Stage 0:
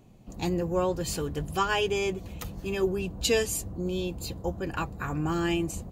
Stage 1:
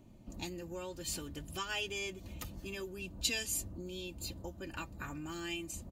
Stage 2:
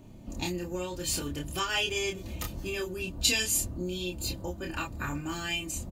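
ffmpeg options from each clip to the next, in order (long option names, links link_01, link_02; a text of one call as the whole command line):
ffmpeg -i in.wav -filter_complex "[0:a]equalizer=frequency=140:width_type=o:width=1.9:gain=5,aecho=1:1:3.3:0.49,acrossover=split=1900[link_01][link_02];[link_01]acompressor=threshold=-37dB:ratio=5[link_03];[link_03][link_02]amix=inputs=2:normalize=0,volume=-5.5dB" out.wav
ffmpeg -i in.wav -filter_complex "[0:a]asplit=2[link_01][link_02];[link_02]adelay=28,volume=-3dB[link_03];[link_01][link_03]amix=inputs=2:normalize=0,volume=7dB" out.wav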